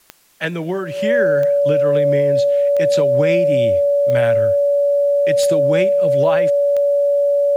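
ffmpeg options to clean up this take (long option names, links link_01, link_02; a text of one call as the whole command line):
ffmpeg -i in.wav -af "adeclick=threshold=4,bandreject=frequency=570:width=30,agate=range=-21dB:threshold=-15dB" out.wav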